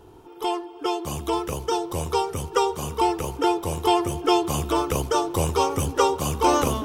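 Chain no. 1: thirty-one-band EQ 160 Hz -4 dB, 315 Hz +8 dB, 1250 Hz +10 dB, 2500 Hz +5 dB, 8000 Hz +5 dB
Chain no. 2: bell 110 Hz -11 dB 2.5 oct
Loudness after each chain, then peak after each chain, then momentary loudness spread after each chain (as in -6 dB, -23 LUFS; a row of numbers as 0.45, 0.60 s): -21.5, -26.0 LUFS; -3.5, -8.0 dBFS; 7, 6 LU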